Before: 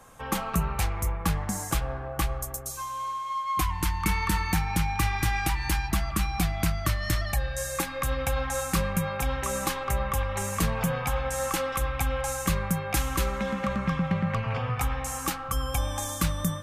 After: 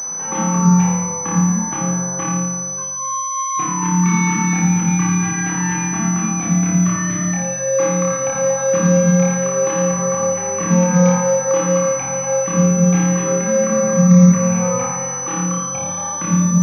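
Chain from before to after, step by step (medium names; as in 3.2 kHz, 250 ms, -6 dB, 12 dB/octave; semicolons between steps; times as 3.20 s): spectral gate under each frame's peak -30 dB strong; high-pass 130 Hz 24 dB/octave; treble shelf 2.1 kHz +9 dB; upward compressor, threshold -32 dBFS; distance through air 290 m; flutter echo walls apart 4.8 m, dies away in 0.99 s; on a send at -3 dB: reverberation RT60 0.45 s, pre-delay 46 ms; on the sum: class-D stage that switches slowly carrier 6 kHz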